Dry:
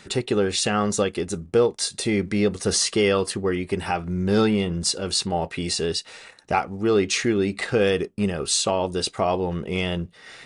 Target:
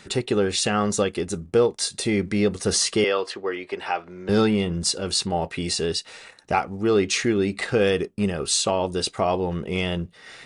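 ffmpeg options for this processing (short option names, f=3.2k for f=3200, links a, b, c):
-filter_complex "[0:a]asettb=1/sr,asplit=3[a][b][c];[a]atrim=end=3.044[d];[b]atrim=start=3.04:end=4.29,asetpts=PTS-STARTPTS,afade=t=in:d=0.004:c=qsin,afade=t=out:st=1.246:d=0.004:c=qsin,acrossover=split=350 5600:gain=0.0708 1 0.1[e][f][g];[e][f][g]amix=inputs=3:normalize=0[h];[c]atrim=start=4.286[i];[d][h]acrossfade=d=0.004:c1=hsin:c2=qsin[j];[j][i]acrossfade=d=0.004:c1=qsin:c2=hsin"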